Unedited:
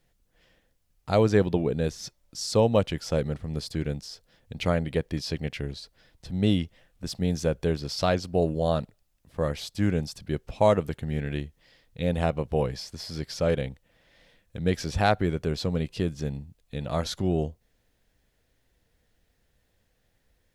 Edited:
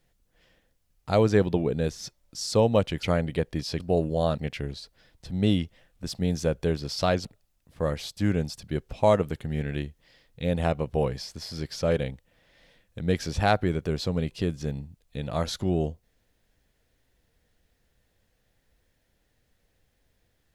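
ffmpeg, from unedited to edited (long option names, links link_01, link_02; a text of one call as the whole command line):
ffmpeg -i in.wav -filter_complex "[0:a]asplit=5[link_01][link_02][link_03][link_04][link_05];[link_01]atrim=end=3.032[link_06];[link_02]atrim=start=4.608:end=5.382[link_07];[link_03]atrim=start=8.248:end=8.832[link_08];[link_04]atrim=start=5.378:end=8.252[link_09];[link_05]atrim=start=8.828[link_10];[link_06][link_07]acrossfade=duration=0.004:curve1=hsin:curve2=hsin[link_11];[link_11][link_08]acrossfade=duration=0.004:curve1=hsin:curve2=hsin[link_12];[link_12][link_09]acrossfade=duration=0.004:curve1=hsin:curve2=hsin[link_13];[link_13][link_10]acrossfade=duration=0.004:curve1=hsin:curve2=hsin" out.wav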